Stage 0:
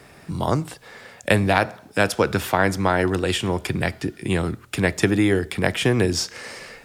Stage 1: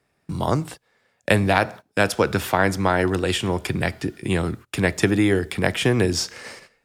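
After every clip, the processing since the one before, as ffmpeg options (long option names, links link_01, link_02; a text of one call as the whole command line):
ffmpeg -i in.wav -af "agate=range=-22dB:threshold=-36dB:ratio=16:detection=peak" out.wav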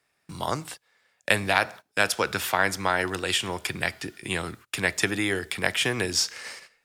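ffmpeg -i in.wav -af "tiltshelf=frequency=710:gain=-7,volume=-5.5dB" out.wav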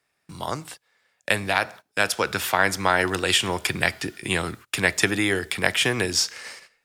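ffmpeg -i in.wav -af "dynaudnorm=framelen=120:gausssize=13:maxgain=11.5dB,volume=-1dB" out.wav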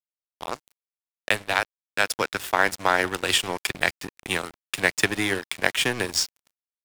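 ffmpeg -i in.wav -af "aeval=exprs='sgn(val(0))*max(abs(val(0))-0.0376,0)':channel_layout=same,volume=1dB" out.wav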